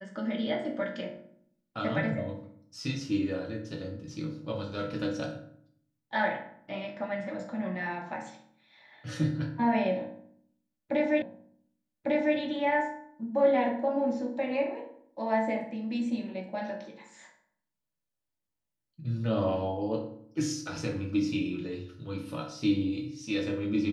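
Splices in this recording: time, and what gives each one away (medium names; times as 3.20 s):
11.22 s: repeat of the last 1.15 s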